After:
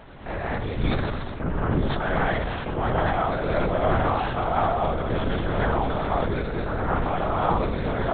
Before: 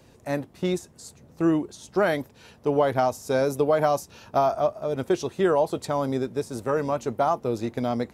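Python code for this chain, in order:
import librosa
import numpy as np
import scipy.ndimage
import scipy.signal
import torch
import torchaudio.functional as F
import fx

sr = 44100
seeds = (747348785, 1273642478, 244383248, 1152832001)

y = fx.bin_compress(x, sr, power=0.6)
y = fx.lowpass(y, sr, hz=1500.0, slope=6)
y = fx.peak_eq(y, sr, hz=410.0, db=-13.5, octaves=2.8)
y = y + 10.0 ** (-12.0 / 20.0) * np.pad(y, (int(74 * sr / 1000.0), 0))[:len(y)]
y = fx.rev_gated(y, sr, seeds[0], gate_ms=240, shape='rising', drr_db=-6.0)
y = fx.lpc_vocoder(y, sr, seeds[1], excitation='whisper', order=8)
y = fx.sustainer(y, sr, db_per_s=26.0)
y = F.gain(torch.from_numpy(y), 1.5).numpy()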